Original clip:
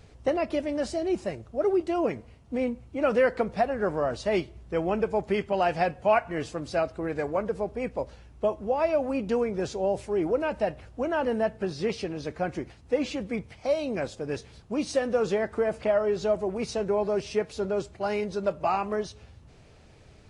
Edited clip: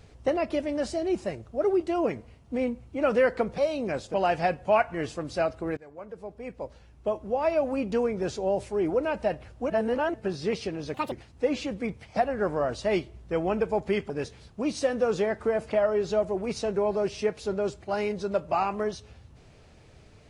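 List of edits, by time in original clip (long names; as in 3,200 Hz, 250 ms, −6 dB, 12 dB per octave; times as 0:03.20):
0:03.58–0:05.51: swap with 0:13.66–0:14.22
0:07.14–0:08.92: fade in, from −23 dB
0:11.07–0:11.51: reverse
0:12.31–0:12.61: play speed 169%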